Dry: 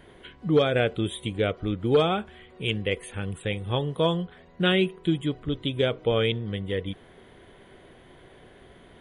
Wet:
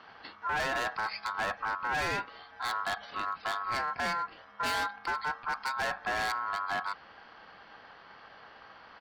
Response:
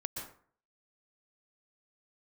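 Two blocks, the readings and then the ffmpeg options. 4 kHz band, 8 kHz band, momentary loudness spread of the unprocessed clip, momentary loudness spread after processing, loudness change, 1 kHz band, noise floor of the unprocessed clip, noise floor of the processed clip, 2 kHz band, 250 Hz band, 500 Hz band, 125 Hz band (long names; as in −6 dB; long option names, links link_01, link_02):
−8.5 dB, +2.0 dB, 10 LU, 21 LU, −6.5 dB, +4.0 dB, −52 dBFS, −54 dBFS, +1.5 dB, −20.5 dB, −16.0 dB, −22.5 dB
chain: -af "aresample=11025,aresample=44100,volume=28dB,asoftclip=hard,volume=-28dB,aeval=exprs='val(0)*sin(2*PI*1200*n/s)':channel_layout=same,volume=1.5dB"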